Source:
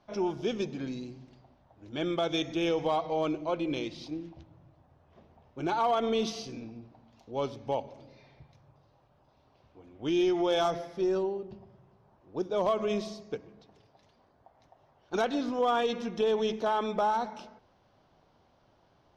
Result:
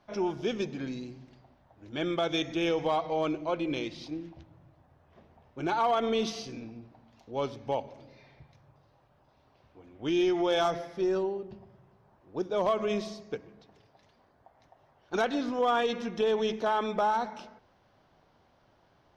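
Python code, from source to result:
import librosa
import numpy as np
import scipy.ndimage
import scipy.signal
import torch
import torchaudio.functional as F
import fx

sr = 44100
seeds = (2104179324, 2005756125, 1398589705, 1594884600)

y = fx.peak_eq(x, sr, hz=1800.0, db=4.0, octaves=0.9)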